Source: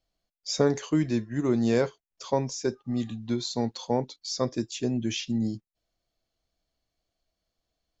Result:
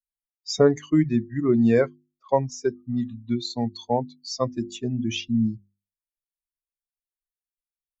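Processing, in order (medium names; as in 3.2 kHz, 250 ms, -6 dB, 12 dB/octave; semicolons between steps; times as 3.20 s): expander on every frequency bin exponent 2; treble shelf 4.7 kHz -8.5 dB; hum notches 50/100/150/200/250/300/350 Hz; 1.44–2.29 s: level-controlled noise filter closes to 890 Hz, open at -22.5 dBFS; trim +8 dB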